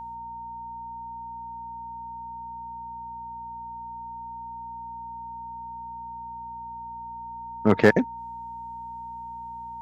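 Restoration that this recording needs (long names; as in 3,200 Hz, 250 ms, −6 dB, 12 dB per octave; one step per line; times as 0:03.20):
clipped peaks rebuilt −6.5 dBFS
hum removal 60.3 Hz, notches 4
notch filter 920 Hz, Q 30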